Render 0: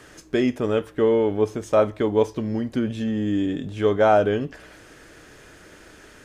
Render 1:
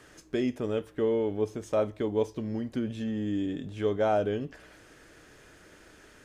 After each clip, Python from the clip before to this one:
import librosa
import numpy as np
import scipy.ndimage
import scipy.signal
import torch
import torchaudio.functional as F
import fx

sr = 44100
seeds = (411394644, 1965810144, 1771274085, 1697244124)

y = fx.dynamic_eq(x, sr, hz=1300.0, q=0.84, threshold_db=-34.0, ratio=4.0, max_db=-5)
y = F.gain(torch.from_numpy(y), -7.0).numpy()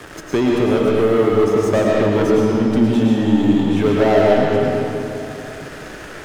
y = fx.leveller(x, sr, passes=3)
y = fx.rev_freeverb(y, sr, rt60_s=2.3, hf_ratio=0.75, predelay_ms=70, drr_db=-3.5)
y = fx.band_squash(y, sr, depth_pct=40)
y = F.gain(torch.from_numpy(y), 2.0).numpy()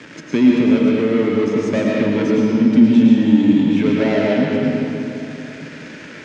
y = fx.cabinet(x, sr, low_hz=140.0, low_slope=12, high_hz=6500.0, hz=(160.0, 250.0, 390.0, 740.0, 1200.0, 2300.0), db=(7, 10, -5, -10, -7, 6))
y = F.gain(torch.from_numpy(y), -1.5).numpy()